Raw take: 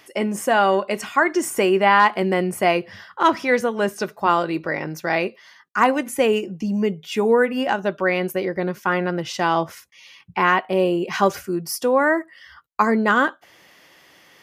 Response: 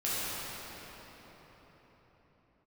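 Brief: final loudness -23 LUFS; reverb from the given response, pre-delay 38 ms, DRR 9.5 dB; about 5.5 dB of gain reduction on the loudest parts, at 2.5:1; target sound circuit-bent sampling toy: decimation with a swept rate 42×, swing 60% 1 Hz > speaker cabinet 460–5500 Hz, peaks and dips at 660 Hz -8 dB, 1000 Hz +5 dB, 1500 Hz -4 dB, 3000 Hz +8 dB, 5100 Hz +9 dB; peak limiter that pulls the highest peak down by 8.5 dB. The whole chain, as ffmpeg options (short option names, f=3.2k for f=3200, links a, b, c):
-filter_complex "[0:a]acompressor=threshold=-19dB:ratio=2.5,alimiter=limit=-15dB:level=0:latency=1,asplit=2[a][b];[1:a]atrim=start_sample=2205,adelay=38[c];[b][c]afir=irnorm=-1:irlink=0,volume=-19dB[d];[a][d]amix=inputs=2:normalize=0,acrusher=samples=42:mix=1:aa=0.000001:lfo=1:lforange=25.2:lforate=1,highpass=460,equalizer=f=660:t=q:w=4:g=-8,equalizer=f=1k:t=q:w=4:g=5,equalizer=f=1.5k:t=q:w=4:g=-4,equalizer=f=3k:t=q:w=4:g=8,equalizer=f=5.1k:t=q:w=4:g=9,lowpass=f=5.5k:w=0.5412,lowpass=f=5.5k:w=1.3066,volume=5.5dB"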